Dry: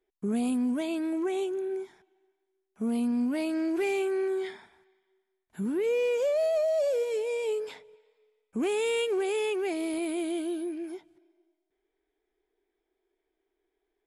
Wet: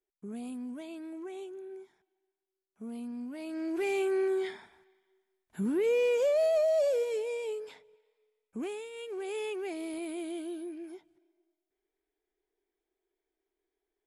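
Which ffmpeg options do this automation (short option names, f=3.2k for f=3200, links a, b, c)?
-af "volume=12dB,afade=t=in:st=3.38:d=0.76:silence=0.251189,afade=t=out:st=6.78:d=0.8:silence=0.446684,afade=t=out:st=8.6:d=0.3:silence=0.266073,afade=t=in:st=8.9:d=0.47:silence=0.251189"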